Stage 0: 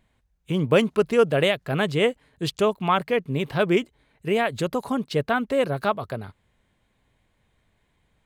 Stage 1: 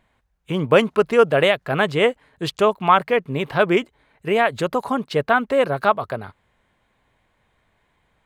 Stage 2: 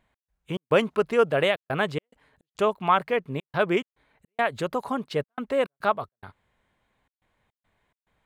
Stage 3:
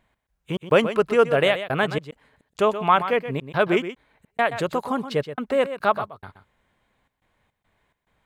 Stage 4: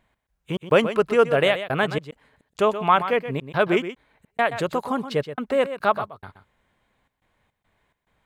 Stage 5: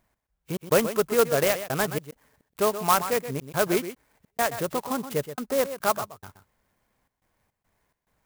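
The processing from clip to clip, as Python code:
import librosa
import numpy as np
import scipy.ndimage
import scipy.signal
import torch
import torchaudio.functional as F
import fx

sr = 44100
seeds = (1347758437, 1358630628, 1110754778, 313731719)

y1 = fx.peak_eq(x, sr, hz=1100.0, db=8.5, octaves=2.7)
y1 = y1 * 10.0 ** (-1.0 / 20.0)
y2 = fx.step_gate(y1, sr, bpm=106, pattern='x.xx.xxxxxx.x', floor_db=-60.0, edge_ms=4.5)
y2 = y2 * 10.0 ** (-6.0 / 20.0)
y3 = y2 + 10.0 ** (-11.5 / 20.0) * np.pad(y2, (int(125 * sr / 1000.0), 0))[:len(y2)]
y3 = y3 * 10.0 ** (3.0 / 20.0)
y4 = y3
y5 = fx.clock_jitter(y4, sr, seeds[0], jitter_ms=0.067)
y5 = y5 * 10.0 ** (-3.5 / 20.0)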